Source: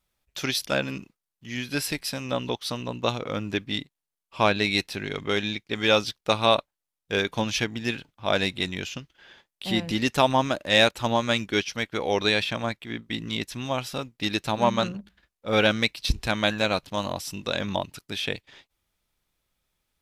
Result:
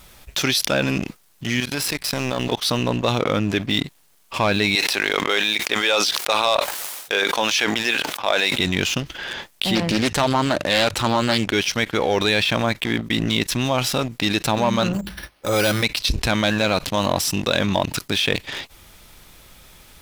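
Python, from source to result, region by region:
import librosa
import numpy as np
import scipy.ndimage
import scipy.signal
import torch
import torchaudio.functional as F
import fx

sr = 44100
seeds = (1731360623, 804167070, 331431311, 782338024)

y = fx.chain(x, sr, fx.law_mismatch(coded='A'),
    fx.level_steps(step_db=20), at=(1.6, 2.52))
y = fx.chain(y, sr, fx.highpass(hz=520.0, slope=12),
    fx.sustainer(db_per_s=100.0), at=(4.75, 8.59))
y = fx.chain(y, sr, fx.lowpass(hz=12000.0, slope=12),
    fx.hum_notches(base_hz=50, count=3),
    fx.doppler_dist(depth_ms=0.45), at=(9.75, 11.53))
y = fx.chain(y, sr, fx.resample_bad(factor=6, down='none', up='hold'),
    fx.notch_comb(f0_hz=230.0), at=(14.93, 15.83))
y = fx.leveller(y, sr, passes=2)
y = fx.env_flatten(y, sr, amount_pct=70)
y = F.gain(torch.from_numpy(y), -6.0).numpy()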